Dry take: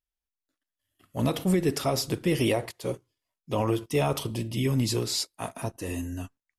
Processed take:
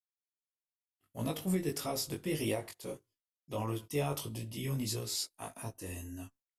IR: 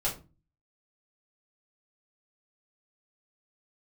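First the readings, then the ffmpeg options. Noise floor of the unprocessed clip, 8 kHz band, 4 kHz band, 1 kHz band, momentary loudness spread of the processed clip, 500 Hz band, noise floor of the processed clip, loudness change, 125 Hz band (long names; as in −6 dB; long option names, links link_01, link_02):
below −85 dBFS, −5.0 dB, −8.0 dB, −9.5 dB, 11 LU, −9.5 dB, below −85 dBFS, −9.0 dB, −9.0 dB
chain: -af "flanger=delay=18.5:depth=2.8:speed=1.6,agate=range=-33dB:threshold=-57dB:ratio=3:detection=peak,highshelf=frequency=8200:gain=11,volume=-7dB"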